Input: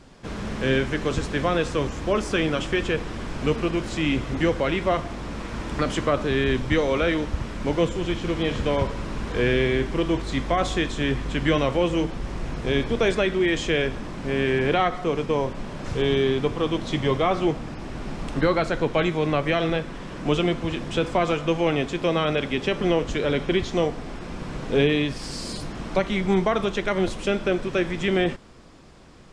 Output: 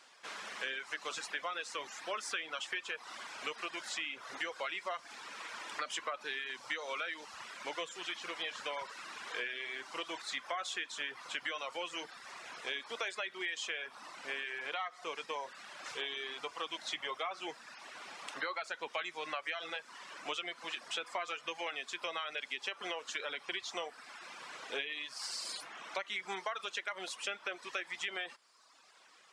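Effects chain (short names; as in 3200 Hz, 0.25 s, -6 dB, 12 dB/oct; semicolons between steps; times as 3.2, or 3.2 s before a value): HPF 1100 Hz 12 dB/oct; compressor 6:1, threshold -32 dBFS, peak gain reduction 10 dB; reverb removal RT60 1.1 s; gain -2 dB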